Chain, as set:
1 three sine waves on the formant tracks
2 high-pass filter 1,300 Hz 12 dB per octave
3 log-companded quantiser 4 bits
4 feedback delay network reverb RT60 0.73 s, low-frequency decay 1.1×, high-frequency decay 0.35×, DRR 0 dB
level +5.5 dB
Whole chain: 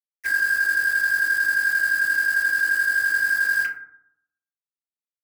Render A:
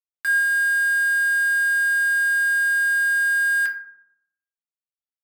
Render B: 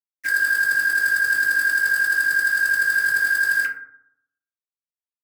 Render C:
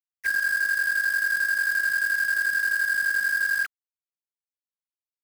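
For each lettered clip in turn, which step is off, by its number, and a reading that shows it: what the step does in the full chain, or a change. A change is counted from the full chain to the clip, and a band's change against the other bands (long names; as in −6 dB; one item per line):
1, change in crest factor −2.5 dB
2, change in integrated loudness +1.5 LU
4, change in crest factor −3.5 dB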